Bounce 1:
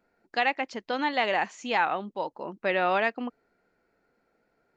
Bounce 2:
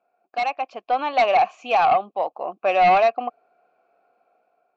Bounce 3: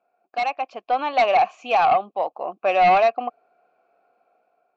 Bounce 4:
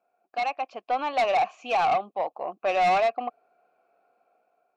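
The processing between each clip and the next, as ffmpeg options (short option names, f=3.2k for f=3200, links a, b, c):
-filter_complex "[0:a]asplit=3[a][b][c];[a]bandpass=f=730:t=q:w=8,volume=0dB[d];[b]bandpass=f=1.09k:t=q:w=8,volume=-6dB[e];[c]bandpass=f=2.44k:t=q:w=8,volume=-9dB[f];[d][e][f]amix=inputs=3:normalize=0,aeval=exprs='0.106*sin(PI/2*2.24*val(0)/0.106)':c=same,dynaudnorm=f=310:g=5:m=7.5dB"
-af anull
-af "asoftclip=type=tanh:threshold=-14.5dB,volume=-3dB"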